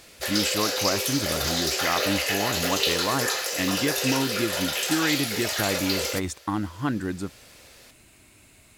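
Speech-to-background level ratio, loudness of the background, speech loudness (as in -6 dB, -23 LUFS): -4.0 dB, -25.0 LUFS, -29.0 LUFS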